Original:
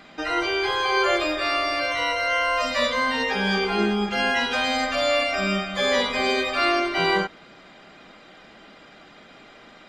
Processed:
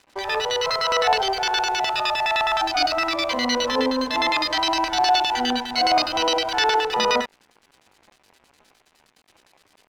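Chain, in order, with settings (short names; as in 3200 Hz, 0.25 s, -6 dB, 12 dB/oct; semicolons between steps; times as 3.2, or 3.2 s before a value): LFO low-pass square 9.7 Hz 710–3700 Hz; crossover distortion -43 dBFS; pitch shift +4 st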